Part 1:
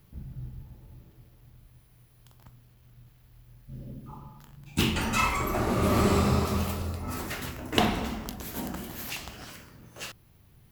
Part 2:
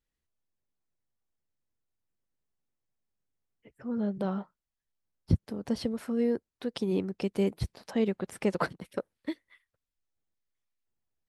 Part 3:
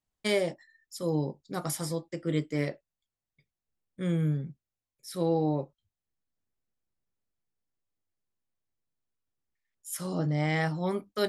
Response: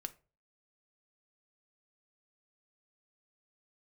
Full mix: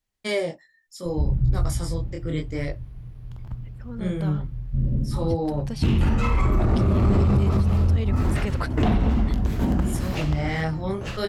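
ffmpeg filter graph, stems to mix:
-filter_complex "[0:a]aemphasis=mode=reproduction:type=riaa,asoftclip=type=tanh:threshold=-6.5dB,adelay=1050,volume=1dB[link_01];[1:a]equalizer=frequency=360:width=0.32:gain=-10,volume=-1dB,asplit=2[link_02][link_03];[2:a]flanger=delay=20:depth=6:speed=0.69,lowpass=10000,volume=-1.5dB,asplit=2[link_04][link_05];[link_05]volume=-23dB[link_06];[link_03]apad=whole_len=519023[link_07];[link_01][link_07]sidechaincompress=threshold=-40dB:ratio=8:attack=22:release=199[link_08];[3:a]atrim=start_sample=2205[link_09];[link_06][link_09]afir=irnorm=-1:irlink=0[link_10];[link_08][link_02][link_04][link_10]amix=inputs=4:normalize=0,acontrast=37,alimiter=limit=-13dB:level=0:latency=1:release=82"

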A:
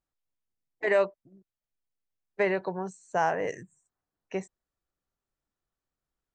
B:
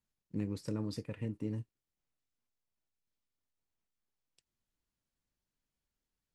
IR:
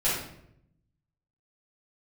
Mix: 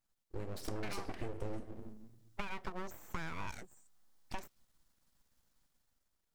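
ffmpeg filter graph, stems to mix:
-filter_complex "[0:a]bass=frequency=250:gain=-5,treble=frequency=4000:gain=3,acompressor=threshold=-31dB:ratio=6,volume=1.5dB[link_01];[1:a]dynaudnorm=framelen=170:gausssize=9:maxgain=12dB,equalizer=frequency=100:width_type=o:width=0.67:gain=-8,equalizer=frequency=400:width_type=o:width=0.67:gain=-10,equalizer=frequency=2500:width_type=o:width=0.67:gain=-7,volume=1dB,asplit=2[link_02][link_03];[link_03]volume=-18.5dB[link_04];[2:a]atrim=start_sample=2205[link_05];[link_04][link_05]afir=irnorm=-1:irlink=0[link_06];[link_01][link_02][link_06]amix=inputs=3:normalize=0,aeval=exprs='abs(val(0))':channel_layout=same,acompressor=threshold=-35dB:ratio=6"

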